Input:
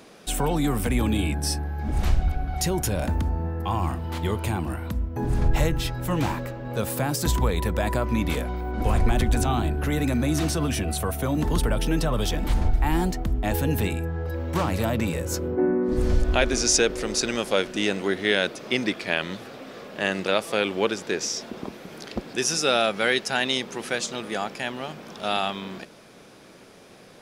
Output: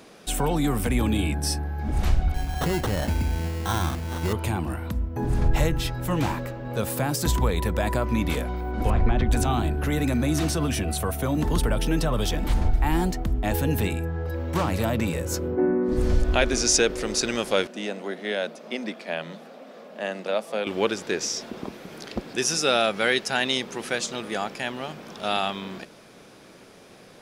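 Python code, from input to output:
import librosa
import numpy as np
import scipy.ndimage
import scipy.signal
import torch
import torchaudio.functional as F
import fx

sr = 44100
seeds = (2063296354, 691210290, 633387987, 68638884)

y = fx.sample_hold(x, sr, seeds[0], rate_hz=2400.0, jitter_pct=0, at=(2.34, 4.33))
y = fx.air_absorb(y, sr, metres=240.0, at=(8.9, 9.31))
y = fx.cheby_ripple_highpass(y, sr, hz=160.0, ripple_db=9, at=(17.67, 20.67))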